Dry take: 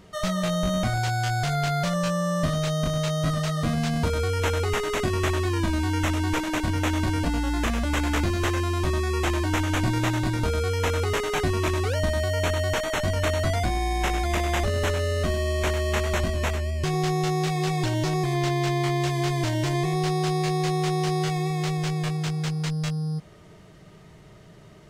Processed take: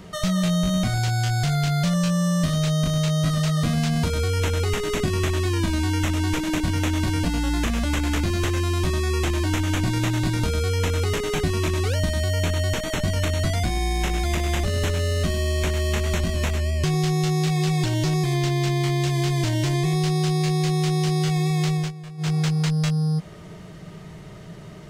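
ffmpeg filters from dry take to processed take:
-filter_complex "[0:a]asettb=1/sr,asplit=3[a][b][c];[a]atrim=end=13.914[d];[b]atrim=start=13.91:end=16.55,asetpts=PTS-STARTPTS,afade=t=in:d=0.004:c=qsin,afade=t=out:st=2.636:d=0.004:c=qsin,aeval=exprs='sgn(val(0))*max(abs(val(0))-0.00299,0)':c=same[e];[c]atrim=start=16.546[f];[d][e]acrossfade=d=0.004:c1=hsin:c2=qsin[g];[g][f]acrossfade=d=0.004:c1=qsin:c2=hsin,asplit=3[h][i][j];[h]atrim=end=21.92,asetpts=PTS-STARTPTS,afade=t=out:st=21.63:d=0.29:c=qsin:silence=0.0944061[k];[i]atrim=start=21.92:end=22.17,asetpts=PTS-STARTPTS,volume=-20.5dB[l];[j]atrim=start=22.17,asetpts=PTS-STARTPTS,afade=t=in:d=0.29:c=qsin:silence=0.0944061[m];[k][l][m]concat=n=3:v=0:a=1,equalizer=f=170:w=3.9:g=5.5,acrossover=split=370|2200[n][o][p];[n]acompressor=threshold=-28dB:ratio=4[q];[o]acompressor=threshold=-41dB:ratio=4[r];[p]acompressor=threshold=-38dB:ratio=4[s];[q][r][s]amix=inputs=3:normalize=0,volume=7dB"

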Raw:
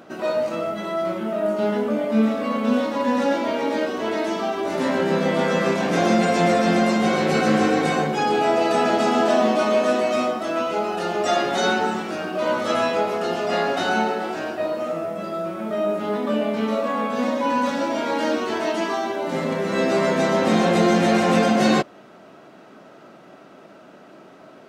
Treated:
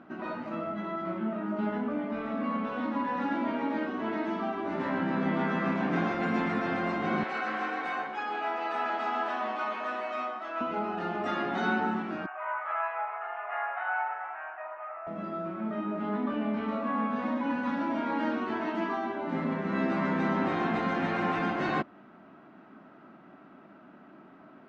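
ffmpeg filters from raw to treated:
-filter_complex "[0:a]asettb=1/sr,asplit=3[a][b][c];[a]atrim=end=7.234[d];[b]atrim=start=7.23:end=10.61,asetpts=PTS-STARTPTS,afade=t=in:d=0.004:c=qsin,afade=t=out:st=3.376:d=0.004:c=qsin,highpass=690[e];[c]atrim=start=10.606[f];[d][e]acrossfade=d=0.004:c1=hsin:c2=qsin[g];[g][f]acrossfade=d=0.004:c1=qsin:c2=hsin,asettb=1/sr,asplit=3[h][i][j];[h]atrim=end=12.264[k];[i]atrim=start=12.26:end=15.07,asetpts=PTS-STARTPTS,afade=t=in:d=0.004:c=qsin,afade=t=out:st=2.806:d=0.004:c=qsin,asuperpass=centerf=1300:order=8:qfactor=0.75[l];[j]atrim=start=15.066[m];[k][l]acrossfade=d=0.004:c1=hsin:c2=qsin[n];[n][m]acrossfade=d=0.004:c1=qsin:c2=hsin,lowpass=1.7k,afftfilt=real='re*lt(hypot(re,im),0.708)':imag='im*lt(hypot(re,im),0.708)':win_size=1024:overlap=0.75,equalizer=f=125:t=o:w=1:g=-5,equalizer=f=250:t=o:w=1:g=4,equalizer=f=500:t=o:w=1:g=-12,volume=-3dB"

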